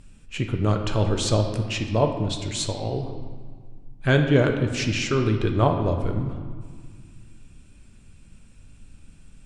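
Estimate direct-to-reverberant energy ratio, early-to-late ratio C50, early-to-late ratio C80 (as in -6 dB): 4.0 dB, 6.5 dB, 8.0 dB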